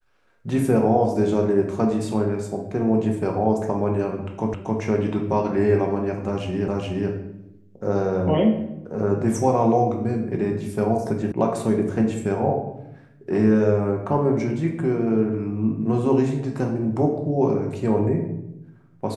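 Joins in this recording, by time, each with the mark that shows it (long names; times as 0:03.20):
0:04.54: the same again, the last 0.27 s
0:06.68: the same again, the last 0.42 s
0:11.32: cut off before it has died away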